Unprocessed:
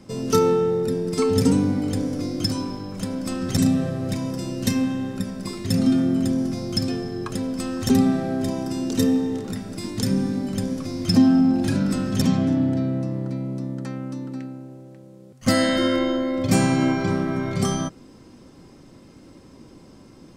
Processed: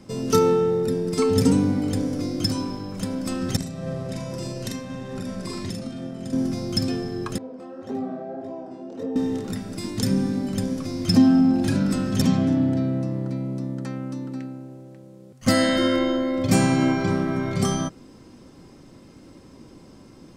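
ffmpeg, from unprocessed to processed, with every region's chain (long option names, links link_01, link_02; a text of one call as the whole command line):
ffmpeg -i in.wav -filter_complex "[0:a]asettb=1/sr,asplit=3[link_01][link_02][link_03];[link_01]atrim=end=3.564[link_04];[link_02]atrim=start=3.56:end=6.33,asetpts=PTS-STARTPTS,afade=type=in:duration=0.004:curve=qsin,afade=type=out:start_time=2.766:duration=0.004:curve=qsin,lowpass=11000,acompressor=threshold=-26dB:ratio=12:attack=3.2:release=140:knee=1:detection=peak,asplit=2[link_05][link_06];[link_06]adelay=44,volume=-2.5dB[link_07];[link_05][link_07]amix=inputs=2:normalize=0,atrim=end_sample=122157[link_08];[link_03]atrim=start=6.326[link_09];[link_04][link_08]acrossfade=duration=0.004:curve1=hsin:curve2=qsin[link_10];[link_10][link_09]acrossfade=duration=0.004:curve1=qsin:curve2=hsin,asettb=1/sr,asplit=3[link_11][link_12][link_13];[link_11]atrim=end=7.384[link_14];[link_12]atrim=start=7.38:end=9.16,asetpts=PTS-STARTPTS,afade=type=in:duration=0.004:curve=qsin,afade=type=out:start_time=1.776:duration=0.004:curve=qsin,flanger=delay=18:depth=7.9:speed=1.7,bandpass=frequency=600:width_type=q:width=1.5[link_15];[link_13]atrim=start=9.156[link_16];[link_14][link_15]acrossfade=duration=0.004:curve1=hsin:curve2=qsin[link_17];[link_17][link_16]acrossfade=duration=0.004:curve1=qsin:curve2=hsin" out.wav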